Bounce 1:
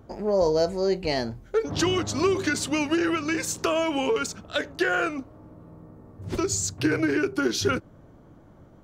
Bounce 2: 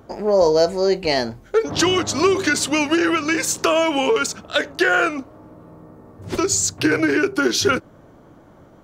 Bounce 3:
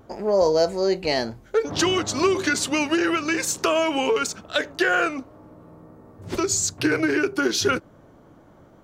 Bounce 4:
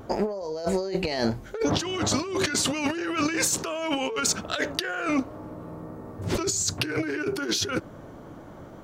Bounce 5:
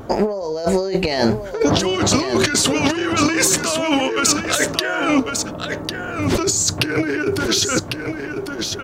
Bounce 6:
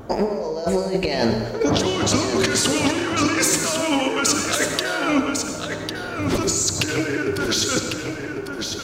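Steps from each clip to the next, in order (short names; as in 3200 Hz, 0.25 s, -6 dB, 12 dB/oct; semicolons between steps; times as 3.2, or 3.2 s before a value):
low shelf 210 Hz -9.5 dB; gain +8 dB
vibrato 0.7 Hz 14 cents; gain -3.5 dB
negative-ratio compressor -29 dBFS, ratio -1; gain +1.5 dB
echo 1.1 s -6.5 dB; gain +8 dB
reverb RT60 1.2 s, pre-delay 62 ms, DRR 5.5 dB; gain -3.5 dB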